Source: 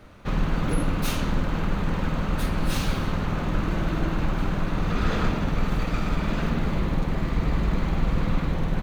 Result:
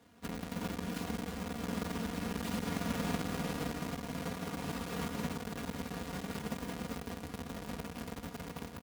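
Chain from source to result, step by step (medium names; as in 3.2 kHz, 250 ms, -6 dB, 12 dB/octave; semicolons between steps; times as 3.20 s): square wave that keeps the level; Doppler pass-by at 3.23 s, 36 m/s, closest 14 m; feedback delay 285 ms, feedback 54%, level -15 dB; in parallel at -3 dB: bit crusher 6-bit; on the sum: comb 4.2 ms, depth 76%; compression 5:1, threshold -31 dBFS, peak gain reduction 22 dB; high-pass 79 Hz 24 dB/octave; trim +1 dB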